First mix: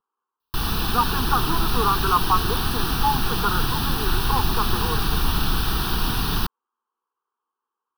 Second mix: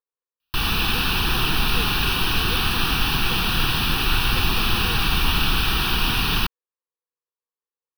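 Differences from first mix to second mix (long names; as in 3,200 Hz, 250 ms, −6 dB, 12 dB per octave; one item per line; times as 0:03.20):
speech: add formant resonators in series e
master: add parametric band 2,500 Hz +13 dB 0.85 octaves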